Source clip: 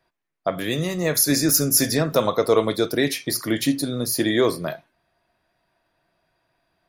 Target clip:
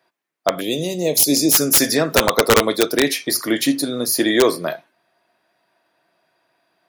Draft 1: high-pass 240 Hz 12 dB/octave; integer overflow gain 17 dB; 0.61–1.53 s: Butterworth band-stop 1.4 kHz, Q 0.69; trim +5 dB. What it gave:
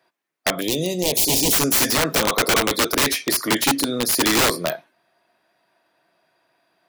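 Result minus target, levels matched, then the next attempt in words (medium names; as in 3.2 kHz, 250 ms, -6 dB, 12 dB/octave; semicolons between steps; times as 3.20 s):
integer overflow: distortion +14 dB
high-pass 240 Hz 12 dB/octave; integer overflow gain 10 dB; 0.61–1.53 s: Butterworth band-stop 1.4 kHz, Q 0.69; trim +5 dB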